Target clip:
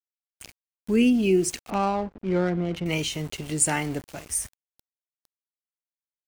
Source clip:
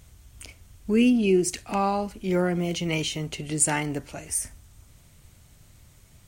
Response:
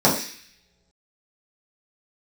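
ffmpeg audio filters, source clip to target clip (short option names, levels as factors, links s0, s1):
-filter_complex "[0:a]aeval=exprs='val(0)*gte(abs(val(0)),0.0112)':c=same,asettb=1/sr,asplit=3[s0][s1][s2];[s0]atrim=end=1.704[s3];[s1]atrim=start=1.7:end=2.86,asetpts=PTS-STARTPTS,afade=t=in:d=0.004:c=qsin,afade=t=out:st=1.156:d=0.004:c=qsin,adynamicsmooth=sensitivity=3:basefreq=760[s4];[s2]atrim=start=2.856[s5];[s3][s4]acrossfade=d=0.004:c1=hsin:c2=qsin[s6];[s6][s5]acrossfade=d=0.004:c1=qsin:c2=hsin"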